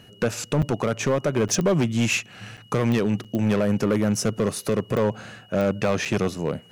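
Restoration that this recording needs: clip repair -15.5 dBFS; de-click; band-stop 2.9 kHz, Q 30; interpolate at 0.62/1.48/2.57/3.24/6.05 s, 6.6 ms

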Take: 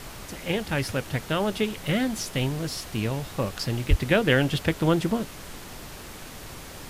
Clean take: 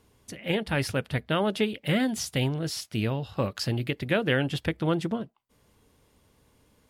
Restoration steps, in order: 3.89–4.01 s: high-pass 140 Hz 24 dB/octave; noise print and reduce 23 dB; 4.00 s: gain correction -4 dB

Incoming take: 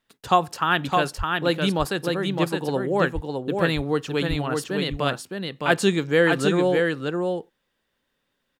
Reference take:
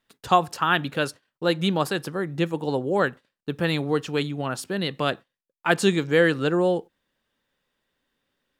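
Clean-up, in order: 1.17–1.29 s: high-pass 140 Hz 24 dB/octave; 3.14–3.26 s: high-pass 140 Hz 24 dB/octave; 4.29–4.41 s: high-pass 140 Hz 24 dB/octave; inverse comb 612 ms -4 dB

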